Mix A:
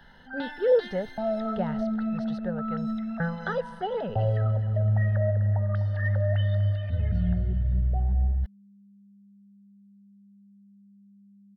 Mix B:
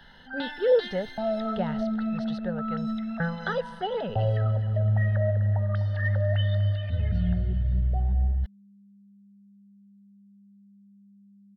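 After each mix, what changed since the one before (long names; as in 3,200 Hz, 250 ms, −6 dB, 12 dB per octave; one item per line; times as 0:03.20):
master: add parametric band 3,500 Hz +6.5 dB 1.3 octaves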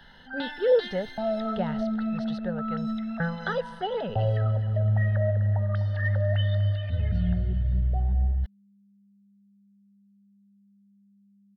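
second sound −5.5 dB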